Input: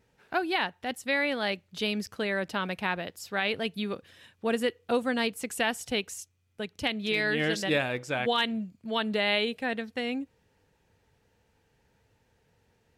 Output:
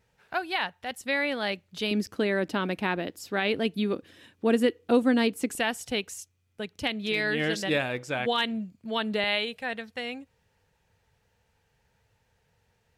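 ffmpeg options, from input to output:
-af "asetnsamples=n=441:p=0,asendcmd='1.01 equalizer g 0;1.91 equalizer g 11.5;5.55 equalizer g 0.5;9.24 equalizer g -10',equalizer=f=300:t=o:w=0.96:g=-8.5"

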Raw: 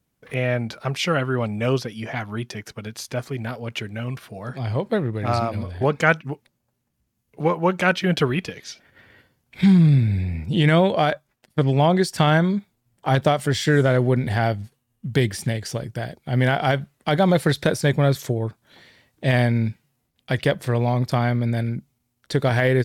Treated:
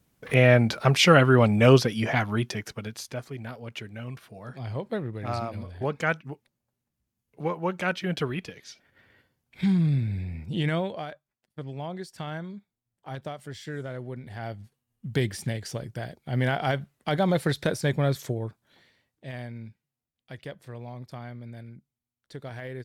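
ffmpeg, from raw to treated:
-af "volume=7.08,afade=t=out:st=1.93:d=1.28:silence=0.211349,afade=t=out:st=10.59:d=0.49:silence=0.334965,afade=t=in:st=14.32:d=0.79:silence=0.251189,afade=t=out:st=18.29:d=0.97:silence=0.223872"

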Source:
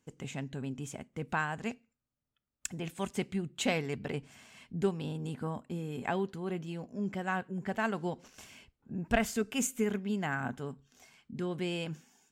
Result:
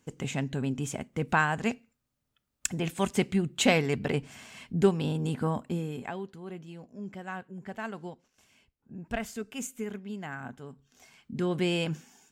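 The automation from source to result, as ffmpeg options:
-af "volume=37.6,afade=t=out:st=5.67:d=0.44:silence=0.237137,afade=t=out:st=8.05:d=0.22:silence=0.251189,afade=t=in:st=8.27:d=0.65:silence=0.251189,afade=t=in:st=10.68:d=0.88:silence=0.251189"

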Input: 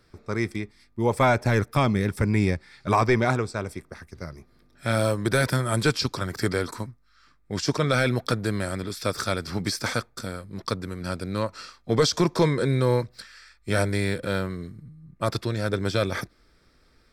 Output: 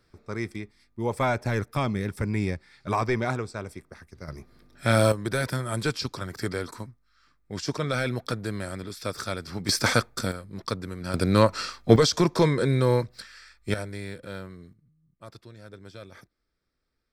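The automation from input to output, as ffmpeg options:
-af "asetnsamples=n=441:p=0,asendcmd='4.28 volume volume 3dB;5.12 volume volume -5dB;9.69 volume volume 5dB;10.32 volume volume -2dB;11.14 volume volume 8.5dB;11.96 volume volume 0dB;13.74 volume volume -11dB;14.73 volume volume -19.5dB',volume=0.562"

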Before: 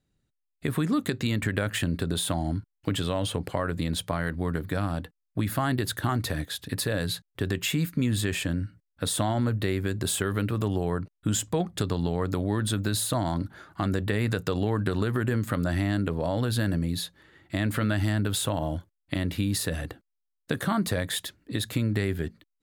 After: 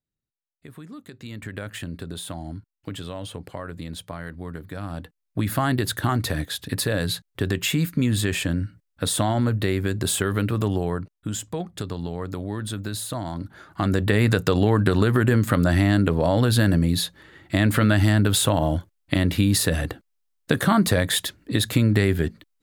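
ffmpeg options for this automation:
-af "volume=5.31,afade=t=in:st=1.08:d=0.54:silence=0.354813,afade=t=in:st=4.76:d=0.78:silence=0.316228,afade=t=out:st=10.68:d=0.61:silence=0.446684,afade=t=in:st=13.37:d=0.82:silence=0.298538"

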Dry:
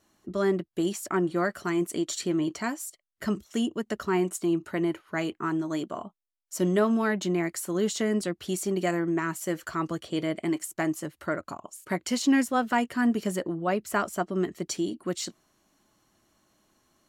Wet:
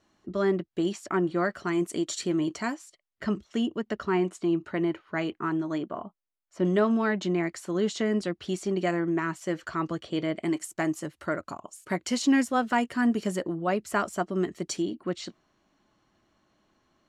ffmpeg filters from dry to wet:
-af "asetnsamples=n=441:p=0,asendcmd='1.73 lowpass f 8800;2.75 lowpass f 4300;5.78 lowpass f 2300;6.65 lowpass f 5200;10.43 lowpass f 9300;14.82 lowpass f 3900',lowpass=5200"

